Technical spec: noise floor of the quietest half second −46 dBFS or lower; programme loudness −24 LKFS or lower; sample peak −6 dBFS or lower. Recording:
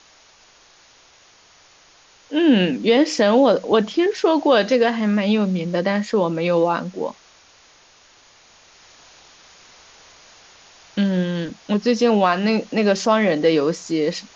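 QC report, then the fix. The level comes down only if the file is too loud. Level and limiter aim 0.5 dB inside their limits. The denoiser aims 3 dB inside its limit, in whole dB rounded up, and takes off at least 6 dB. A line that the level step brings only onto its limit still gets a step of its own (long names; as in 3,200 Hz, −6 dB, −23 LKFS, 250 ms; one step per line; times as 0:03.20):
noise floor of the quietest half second −52 dBFS: in spec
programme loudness −19.0 LKFS: out of spec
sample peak −4.5 dBFS: out of spec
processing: level −5.5 dB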